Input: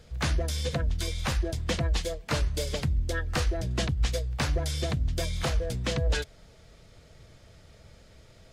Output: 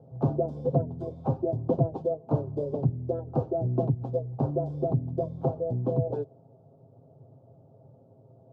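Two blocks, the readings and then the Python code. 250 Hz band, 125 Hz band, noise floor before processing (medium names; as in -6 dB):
+5.0 dB, +1.5 dB, -55 dBFS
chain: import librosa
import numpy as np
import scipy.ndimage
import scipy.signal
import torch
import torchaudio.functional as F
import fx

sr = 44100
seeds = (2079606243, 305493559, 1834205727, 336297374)

y = scipy.signal.sosfilt(scipy.signal.ellip(3, 1.0, 40, [110.0, 800.0], 'bandpass', fs=sr, output='sos'), x)
y = y + 0.55 * np.pad(y, (int(7.5 * sr / 1000.0), 0))[:len(y)]
y = fx.dynamic_eq(y, sr, hz=370.0, q=1.7, threshold_db=-48.0, ratio=4.0, max_db=5)
y = fx.rider(y, sr, range_db=10, speed_s=2.0)
y = y * librosa.db_to_amplitude(3.0)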